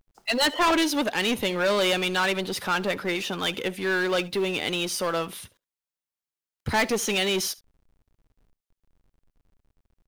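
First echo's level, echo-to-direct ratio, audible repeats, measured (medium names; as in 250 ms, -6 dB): -22.0 dB, -22.0 dB, 1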